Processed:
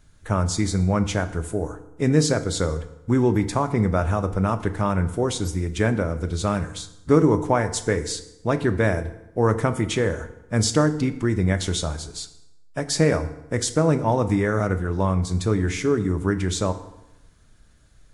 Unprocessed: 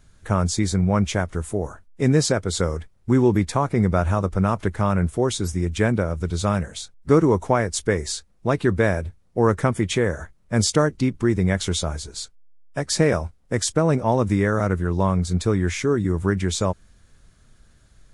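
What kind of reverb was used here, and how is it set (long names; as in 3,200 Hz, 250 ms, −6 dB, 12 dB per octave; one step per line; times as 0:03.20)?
feedback delay network reverb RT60 0.92 s, low-frequency decay 1.05×, high-frequency decay 0.75×, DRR 9.5 dB
level −1.5 dB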